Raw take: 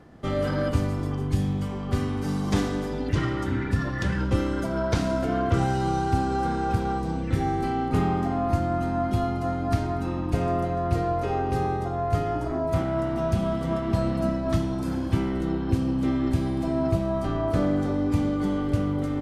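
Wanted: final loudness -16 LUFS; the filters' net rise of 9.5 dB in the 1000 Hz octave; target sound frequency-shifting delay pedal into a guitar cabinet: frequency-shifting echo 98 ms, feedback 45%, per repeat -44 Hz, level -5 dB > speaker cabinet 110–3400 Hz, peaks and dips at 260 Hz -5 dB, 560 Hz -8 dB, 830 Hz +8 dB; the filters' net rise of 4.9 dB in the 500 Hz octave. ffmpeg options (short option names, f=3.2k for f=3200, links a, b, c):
-filter_complex "[0:a]equalizer=f=500:t=o:g=8,equalizer=f=1k:t=o:g=4,asplit=7[a][b][c][d][e][f][g];[b]adelay=98,afreqshift=-44,volume=-5dB[h];[c]adelay=196,afreqshift=-88,volume=-11.9dB[i];[d]adelay=294,afreqshift=-132,volume=-18.9dB[j];[e]adelay=392,afreqshift=-176,volume=-25.8dB[k];[f]adelay=490,afreqshift=-220,volume=-32.7dB[l];[g]adelay=588,afreqshift=-264,volume=-39.7dB[m];[a][h][i][j][k][l][m]amix=inputs=7:normalize=0,highpass=110,equalizer=f=260:t=q:w=4:g=-5,equalizer=f=560:t=q:w=4:g=-8,equalizer=f=830:t=q:w=4:g=8,lowpass=f=3.4k:w=0.5412,lowpass=f=3.4k:w=1.3066,volume=6dB"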